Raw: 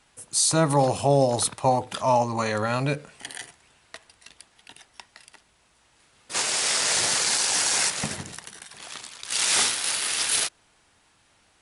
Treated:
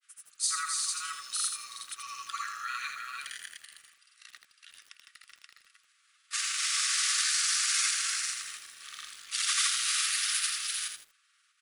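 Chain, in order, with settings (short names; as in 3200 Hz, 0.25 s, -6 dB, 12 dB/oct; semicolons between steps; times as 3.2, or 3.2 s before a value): brick-wall FIR high-pass 1100 Hz; echo 0.392 s -4 dB; grains 0.1 s, grains 20/s, pitch spread up and down by 0 st; lo-fi delay 82 ms, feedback 35%, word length 8-bit, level -5.5 dB; gain -5 dB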